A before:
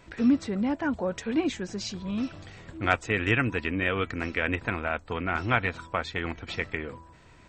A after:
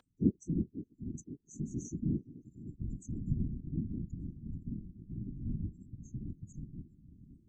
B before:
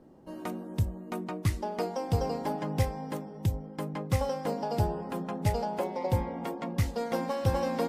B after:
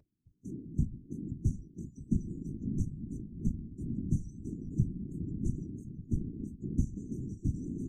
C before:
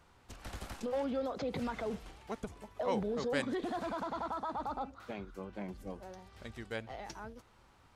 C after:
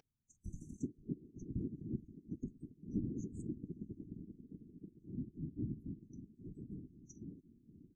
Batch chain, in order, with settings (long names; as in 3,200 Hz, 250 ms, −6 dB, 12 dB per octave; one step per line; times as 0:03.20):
mains-hum notches 60/120/180 Hz
in parallel at −0.5 dB: downward compressor 6 to 1, threshold −41 dBFS
on the sum: linear-phase brick-wall band-stop 240–5,800 Hz
high-frequency loss of the air 130 metres
upward compression, threshold −51 dBFS
noise reduction from a noise print of the clip's start 29 dB
parametric band 75 Hz −9.5 dB 0.78 octaves
on a send: bucket-brigade delay 527 ms, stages 2,048, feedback 72%, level −16 dB
on the sum: random phases in short frames
level +1 dB